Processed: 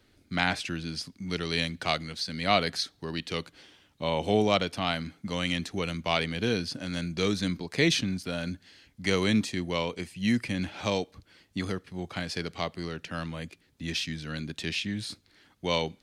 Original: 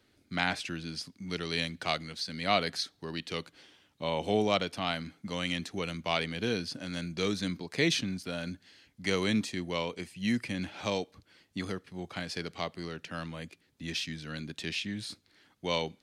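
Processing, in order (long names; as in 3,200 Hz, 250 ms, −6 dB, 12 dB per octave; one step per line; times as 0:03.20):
low-shelf EQ 62 Hz +11.5 dB
level +3 dB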